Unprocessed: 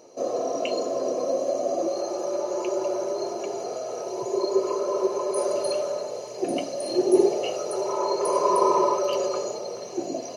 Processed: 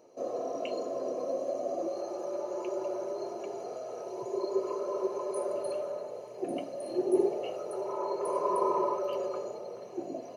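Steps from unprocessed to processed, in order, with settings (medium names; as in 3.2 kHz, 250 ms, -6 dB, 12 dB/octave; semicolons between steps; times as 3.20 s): peaking EQ 5.5 kHz -8 dB 1.4 oct, from 5.38 s -14.5 dB; trim -7.5 dB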